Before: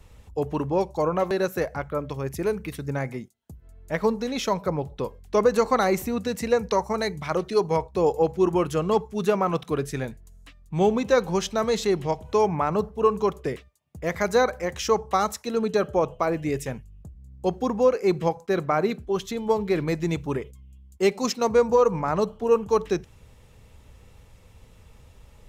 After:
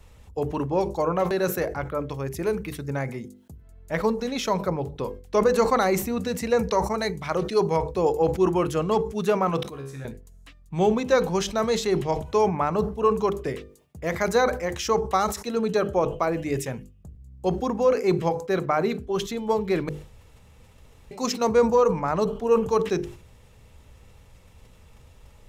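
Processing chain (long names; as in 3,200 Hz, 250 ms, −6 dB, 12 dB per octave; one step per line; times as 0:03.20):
0:19.89–0:21.11: fill with room tone
mains-hum notches 50/100/150/200/250/300/350/400/450/500 Hz
0:09.63–0:10.05: tuned comb filter 68 Hz, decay 0.62 s, harmonics all, mix 90%
level that may fall only so fast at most 110 dB per second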